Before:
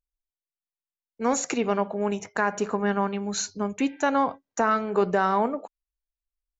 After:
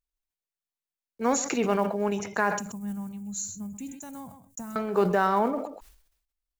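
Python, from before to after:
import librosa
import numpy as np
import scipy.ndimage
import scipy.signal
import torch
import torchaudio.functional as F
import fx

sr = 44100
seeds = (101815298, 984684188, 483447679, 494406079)

y = fx.block_float(x, sr, bits=7)
y = fx.curve_eq(y, sr, hz=(140.0, 220.0, 410.0, 820.0, 1400.0, 5100.0, 7400.0), db=(0, -6, -26, -20, -26, -14, 3), at=(2.59, 4.76))
y = y + 10.0 ** (-18.0 / 20.0) * np.pad(y, (int(129 * sr / 1000.0), 0))[:len(y)]
y = fx.sustainer(y, sr, db_per_s=77.0)
y = F.gain(torch.from_numpy(y), -1.0).numpy()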